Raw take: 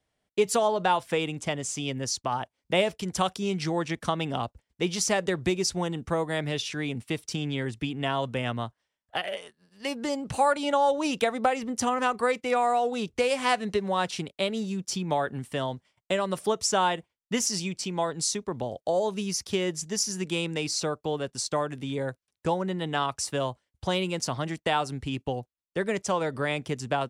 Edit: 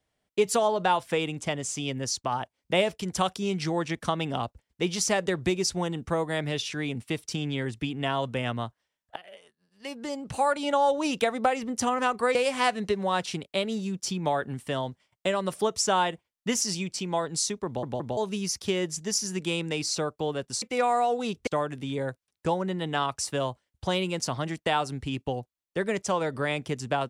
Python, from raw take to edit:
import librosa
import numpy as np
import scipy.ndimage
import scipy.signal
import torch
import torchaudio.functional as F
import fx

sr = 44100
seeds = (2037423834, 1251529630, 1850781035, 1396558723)

y = fx.edit(x, sr, fx.fade_in_from(start_s=9.16, length_s=1.64, floor_db=-20.0),
    fx.move(start_s=12.35, length_s=0.85, to_s=21.47),
    fx.stutter_over(start_s=18.51, slice_s=0.17, count=3), tone=tone)